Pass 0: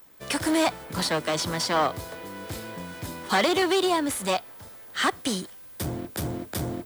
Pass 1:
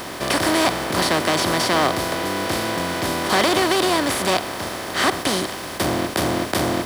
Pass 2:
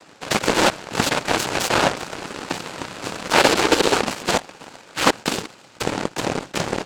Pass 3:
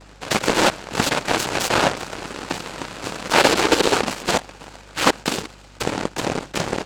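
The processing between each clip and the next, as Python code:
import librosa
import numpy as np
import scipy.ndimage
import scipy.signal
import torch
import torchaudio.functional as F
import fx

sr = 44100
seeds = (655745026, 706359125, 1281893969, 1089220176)

y1 = fx.bin_compress(x, sr, power=0.4)
y2 = fx.noise_vocoder(y1, sr, seeds[0], bands=8)
y2 = fx.cheby_harmonics(y2, sr, harmonics=(3, 7), levels_db=(-35, -18), full_scale_db=-4.5)
y2 = y2 * 10.0 ** (4.0 / 20.0)
y3 = fx.add_hum(y2, sr, base_hz=50, snr_db=26)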